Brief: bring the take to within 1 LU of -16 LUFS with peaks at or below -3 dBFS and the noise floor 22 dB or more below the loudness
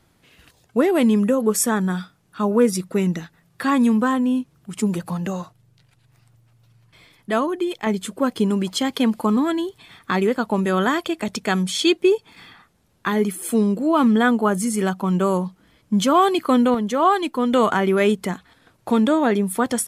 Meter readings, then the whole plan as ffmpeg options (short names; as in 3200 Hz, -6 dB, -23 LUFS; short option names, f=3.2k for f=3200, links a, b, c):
loudness -20.5 LUFS; peak -6.0 dBFS; loudness target -16.0 LUFS
-> -af "volume=4.5dB,alimiter=limit=-3dB:level=0:latency=1"